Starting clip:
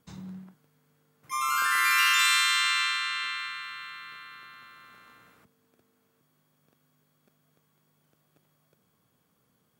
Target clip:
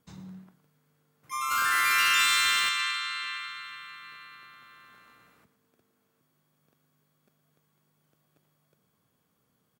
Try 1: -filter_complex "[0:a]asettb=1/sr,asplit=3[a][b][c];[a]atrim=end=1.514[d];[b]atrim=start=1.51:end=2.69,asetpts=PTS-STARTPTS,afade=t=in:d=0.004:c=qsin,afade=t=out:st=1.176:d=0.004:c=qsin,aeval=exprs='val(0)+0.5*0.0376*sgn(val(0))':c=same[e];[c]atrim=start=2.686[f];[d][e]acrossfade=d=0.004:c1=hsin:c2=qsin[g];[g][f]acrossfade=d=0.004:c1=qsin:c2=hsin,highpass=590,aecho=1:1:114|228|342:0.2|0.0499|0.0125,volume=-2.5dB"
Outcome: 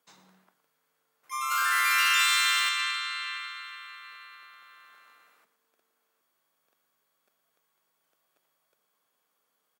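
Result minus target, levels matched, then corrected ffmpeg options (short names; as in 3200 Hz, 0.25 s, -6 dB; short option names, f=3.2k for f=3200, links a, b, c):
500 Hz band -4.0 dB
-filter_complex "[0:a]asettb=1/sr,asplit=3[a][b][c];[a]atrim=end=1.514[d];[b]atrim=start=1.51:end=2.69,asetpts=PTS-STARTPTS,afade=t=in:d=0.004:c=qsin,afade=t=out:st=1.176:d=0.004:c=qsin,aeval=exprs='val(0)+0.5*0.0376*sgn(val(0))':c=same[e];[c]atrim=start=2.686[f];[d][e]acrossfade=d=0.004:c1=hsin:c2=qsin[g];[g][f]acrossfade=d=0.004:c1=qsin:c2=hsin,aecho=1:1:114|228|342:0.2|0.0499|0.0125,volume=-2.5dB"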